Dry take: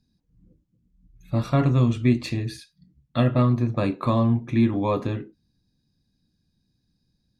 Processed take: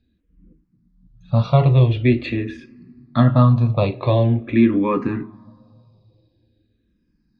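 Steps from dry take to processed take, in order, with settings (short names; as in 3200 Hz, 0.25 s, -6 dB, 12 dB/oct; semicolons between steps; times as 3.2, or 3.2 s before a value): LPF 4200 Hz 24 dB/oct; on a send at -23 dB: reverb RT60 2.4 s, pre-delay 7 ms; on the sum: endless phaser -0.45 Hz; gain +8 dB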